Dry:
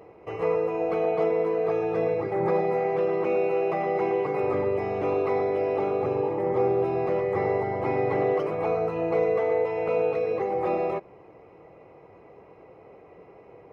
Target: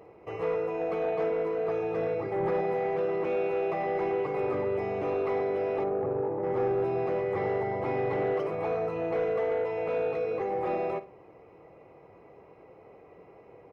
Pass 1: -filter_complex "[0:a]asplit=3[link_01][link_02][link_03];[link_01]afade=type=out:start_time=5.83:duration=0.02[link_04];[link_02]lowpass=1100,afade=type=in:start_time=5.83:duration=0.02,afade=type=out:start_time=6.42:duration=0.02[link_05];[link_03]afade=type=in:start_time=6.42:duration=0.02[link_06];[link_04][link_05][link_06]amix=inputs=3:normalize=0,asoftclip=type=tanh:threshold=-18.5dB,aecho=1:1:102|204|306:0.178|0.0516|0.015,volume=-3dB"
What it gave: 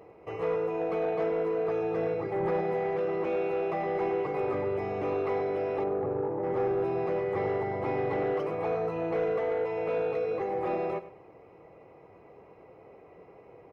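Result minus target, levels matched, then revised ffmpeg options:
echo 46 ms late
-filter_complex "[0:a]asplit=3[link_01][link_02][link_03];[link_01]afade=type=out:start_time=5.83:duration=0.02[link_04];[link_02]lowpass=1100,afade=type=in:start_time=5.83:duration=0.02,afade=type=out:start_time=6.42:duration=0.02[link_05];[link_03]afade=type=in:start_time=6.42:duration=0.02[link_06];[link_04][link_05][link_06]amix=inputs=3:normalize=0,asoftclip=type=tanh:threshold=-18.5dB,aecho=1:1:56|112|168:0.178|0.0516|0.015,volume=-3dB"

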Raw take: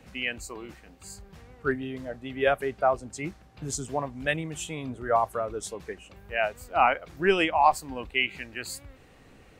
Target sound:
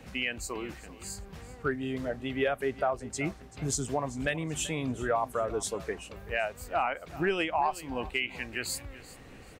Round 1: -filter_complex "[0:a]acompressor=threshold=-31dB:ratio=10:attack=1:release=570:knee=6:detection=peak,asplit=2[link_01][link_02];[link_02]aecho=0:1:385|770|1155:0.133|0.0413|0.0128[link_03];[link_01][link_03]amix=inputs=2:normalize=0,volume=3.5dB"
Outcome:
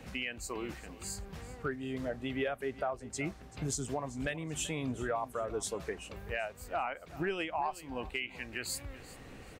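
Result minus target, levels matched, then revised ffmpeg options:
downward compressor: peak gain reduction +6.5 dB
-filter_complex "[0:a]acompressor=threshold=-24dB:ratio=10:attack=1:release=570:knee=6:detection=peak,asplit=2[link_01][link_02];[link_02]aecho=0:1:385|770|1155:0.133|0.0413|0.0128[link_03];[link_01][link_03]amix=inputs=2:normalize=0,volume=3.5dB"

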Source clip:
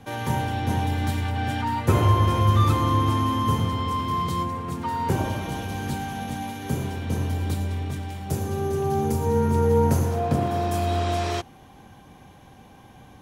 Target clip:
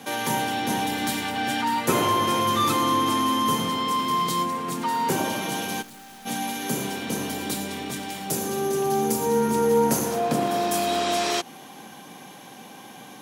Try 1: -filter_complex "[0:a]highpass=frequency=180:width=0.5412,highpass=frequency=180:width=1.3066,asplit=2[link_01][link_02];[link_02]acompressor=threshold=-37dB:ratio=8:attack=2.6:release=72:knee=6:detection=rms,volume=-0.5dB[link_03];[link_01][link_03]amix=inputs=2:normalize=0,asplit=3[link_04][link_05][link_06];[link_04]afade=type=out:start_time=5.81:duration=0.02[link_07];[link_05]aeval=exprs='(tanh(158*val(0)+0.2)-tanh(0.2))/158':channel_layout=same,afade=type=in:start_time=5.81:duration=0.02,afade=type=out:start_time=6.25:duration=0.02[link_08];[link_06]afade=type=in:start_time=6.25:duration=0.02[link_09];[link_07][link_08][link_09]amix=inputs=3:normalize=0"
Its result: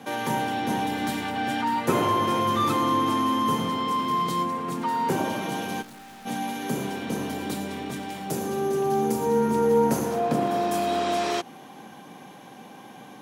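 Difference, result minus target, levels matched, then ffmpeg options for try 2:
4,000 Hz band −4.5 dB
-filter_complex "[0:a]highpass=frequency=180:width=0.5412,highpass=frequency=180:width=1.3066,highshelf=frequency=2700:gain=9.5,asplit=2[link_01][link_02];[link_02]acompressor=threshold=-37dB:ratio=8:attack=2.6:release=72:knee=6:detection=rms,volume=-0.5dB[link_03];[link_01][link_03]amix=inputs=2:normalize=0,asplit=3[link_04][link_05][link_06];[link_04]afade=type=out:start_time=5.81:duration=0.02[link_07];[link_05]aeval=exprs='(tanh(158*val(0)+0.2)-tanh(0.2))/158':channel_layout=same,afade=type=in:start_time=5.81:duration=0.02,afade=type=out:start_time=6.25:duration=0.02[link_08];[link_06]afade=type=in:start_time=6.25:duration=0.02[link_09];[link_07][link_08][link_09]amix=inputs=3:normalize=0"

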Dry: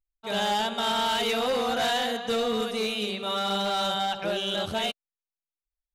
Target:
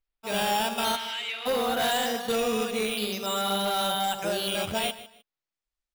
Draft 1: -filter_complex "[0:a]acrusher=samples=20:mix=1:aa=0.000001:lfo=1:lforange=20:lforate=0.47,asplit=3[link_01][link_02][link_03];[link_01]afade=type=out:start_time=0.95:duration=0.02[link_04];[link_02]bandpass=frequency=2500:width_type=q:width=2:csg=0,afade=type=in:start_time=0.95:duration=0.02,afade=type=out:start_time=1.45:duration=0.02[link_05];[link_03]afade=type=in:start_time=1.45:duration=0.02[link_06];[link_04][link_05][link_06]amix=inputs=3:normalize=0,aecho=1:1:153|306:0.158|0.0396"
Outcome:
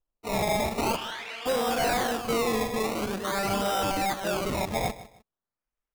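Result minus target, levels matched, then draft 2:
sample-and-hold swept by an LFO: distortion +11 dB
-filter_complex "[0:a]acrusher=samples=5:mix=1:aa=0.000001:lfo=1:lforange=5:lforate=0.47,asplit=3[link_01][link_02][link_03];[link_01]afade=type=out:start_time=0.95:duration=0.02[link_04];[link_02]bandpass=frequency=2500:width_type=q:width=2:csg=0,afade=type=in:start_time=0.95:duration=0.02,afade=type=out:start_time=1.45:duration=0.02[link_05];[link_03]afade=type=in:start_time=1.45:duration=0.02[link_06];[link_04][link_05][link_06]amix=inputs=3:normalize=0,aecho=1:1:153|306:0.158|0.0396"

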